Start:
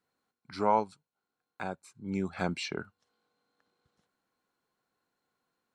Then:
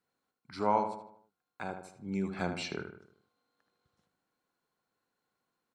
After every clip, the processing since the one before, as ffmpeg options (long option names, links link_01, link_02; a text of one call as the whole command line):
ffmpeg -i in.wav -filter_complex "[0:a]asplit=2[link_01][link_02];[link_02]adelay=77,lowpass=frequency=2600:poles=1,volume=-7dB,asplit=2[link_03][link_04];[link_04]adelay=77,lowpass=frequency=2600:poles=1,volume=0.48,asplit=2[link_05][link_06];[link_06]adelay=77,lowpass=frequency=2600:poles=1,volume=0.48,asplit=2[link_07][link_08];[link_08]adelay=77,lowpass=frequency=2600:poles=1,volume=0.48,asplit=2[link_09][link_10];[link_10]adelay=77,lowpass=frequency=2600:poles=1,volume=0.48,asplit=2[link_11][link_12];[link_12]adelay=77,lowpass=frequency=2600:poles=1,volume=0.48[link_13];[link_01][link_03][link_05][link_07][link_09][link_11][link_13]amix=inputs=7:normalize=0,volume=-2.5dB" out.wav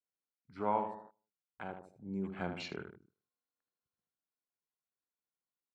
ffmpeg -i in.wav -af "afwtdn=0.00447,volume=-4.5dB" out.wav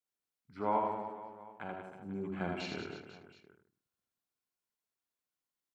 ffmpeg -i in.wav -af "aecho=1:1:80|184|319.2|495|723.4:0.631|0.398|0.251|0.158|0.1" out.wav